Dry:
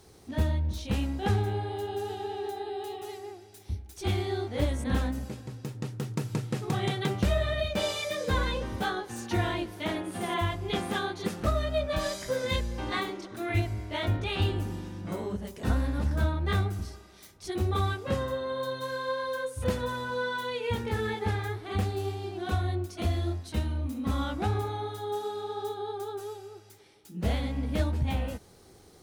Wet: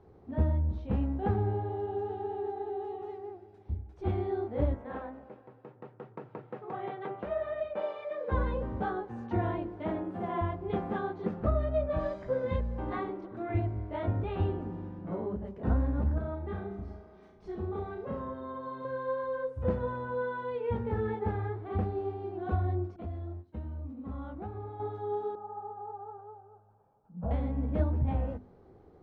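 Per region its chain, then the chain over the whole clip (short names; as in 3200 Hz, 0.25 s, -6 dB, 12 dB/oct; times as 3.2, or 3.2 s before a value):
4.74–8.32 HPF 260 Hz 6 dB/oct + three-band isolator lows -13 dB, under 390 Hz, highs -14 dB, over 3700 Hz
16.18–18.85 comb 4.7 ms, depth 46% + compressor 2:1, threshold -37 dBFS + flutter echo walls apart 6 m, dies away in 0.47 s
22.96–24.8 expander -33 dBFS + compressor 2:1, threshold -42 dBFS
25.35–27.31 LPF 2100 Hz 24 dB/oct + bell 81 Hz -8.5 dB 0.66 oct + fixed phaser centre 850 Hz, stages 4
whole clip: LPF 1000 Hz 12 dB/oct; notches 50/100/150/200/250/300/350 Hz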